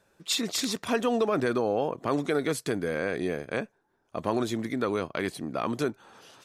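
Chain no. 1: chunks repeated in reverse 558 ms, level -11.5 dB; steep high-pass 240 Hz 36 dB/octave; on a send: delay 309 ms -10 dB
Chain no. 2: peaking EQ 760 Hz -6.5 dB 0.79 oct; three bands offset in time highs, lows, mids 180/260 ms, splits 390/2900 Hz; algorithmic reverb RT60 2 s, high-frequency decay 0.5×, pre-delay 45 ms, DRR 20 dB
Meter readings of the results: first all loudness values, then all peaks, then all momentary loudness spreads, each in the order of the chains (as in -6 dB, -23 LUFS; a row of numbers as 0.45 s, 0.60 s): -29.0 LUFS, -32.0 LUFS; -12.5 dBFS, -16.5 dBFS; 7 LU, 6 LU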